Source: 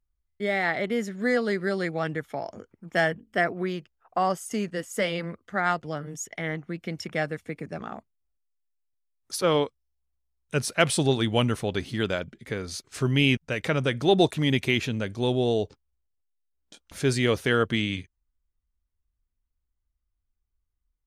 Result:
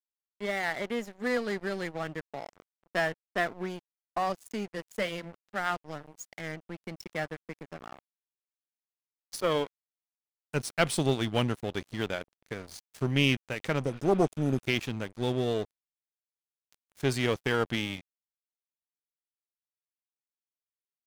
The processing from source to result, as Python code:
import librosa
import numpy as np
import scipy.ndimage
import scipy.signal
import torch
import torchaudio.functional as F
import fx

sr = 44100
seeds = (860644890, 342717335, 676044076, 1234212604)

y = fx.spec_repair(x, sr, seeds[0], start_s=13.88, length_s=0.76, low_hz=830.0, high_hz=4900.0, source='before')
y = fx.tube_stage(y, sr, drive_db=11.0, bias=0.6)
y = np.sign(y) * np.maximum(np.abs(y) - 10.0 ** (-39.0 / 20.0), 0.0)